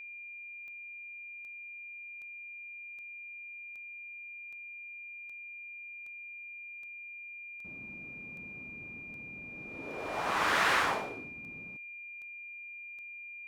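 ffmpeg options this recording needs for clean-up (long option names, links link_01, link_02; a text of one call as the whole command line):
ffmpeg -i in.wav -af "adeclick=threshold=4,bandreject=frequency=2400:width=30" out.wav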